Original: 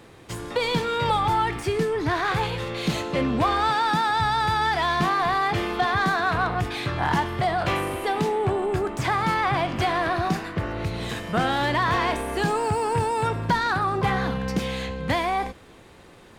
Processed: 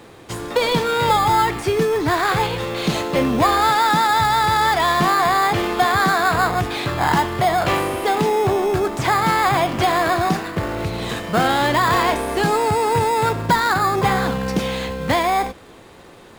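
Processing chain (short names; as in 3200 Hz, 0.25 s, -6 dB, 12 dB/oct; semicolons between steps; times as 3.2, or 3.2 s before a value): low shelf 210 Hz -6.5 dB; in parallel at -7 dB: sample-and-hold 15×; on the sum: gain +4.5 dB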